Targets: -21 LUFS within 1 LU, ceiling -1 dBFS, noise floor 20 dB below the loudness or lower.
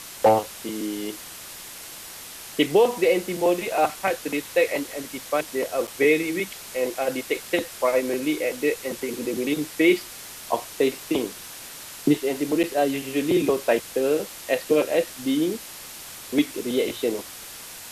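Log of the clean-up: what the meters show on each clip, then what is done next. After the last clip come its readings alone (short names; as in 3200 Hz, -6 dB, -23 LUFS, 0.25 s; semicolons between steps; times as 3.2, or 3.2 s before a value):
dropouts 2; longest dropout 7.3 ms; noise floor -40 dBFS; noise floor target -45 dBFS; loudness -24.5 LUFS; peak -8.0 dBFS; loudness target -21.0 LUFS
-> interpolate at 5.87/12.63, 7.3 ms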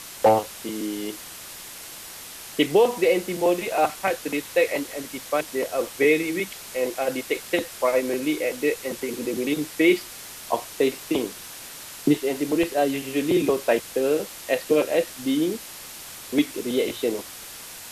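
dropouts 0; noise floor -40 dBFS; noise floor target -45 dBFS
-> noise print and reduce 6 dB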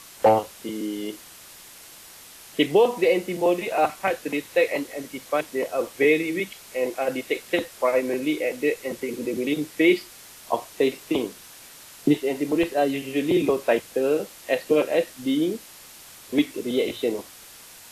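noise floor -46 dBFS; loudness -24.5 LUFS; peak -8.0 dBFS; loudness target -21.0 LUFS
-> gain +3.5 dB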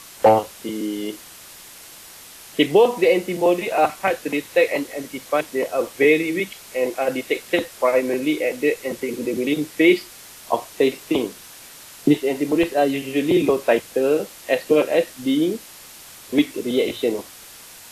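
loudness -21.0 LUFS; peak -4.5 dBFS; noise floor -43 dBFS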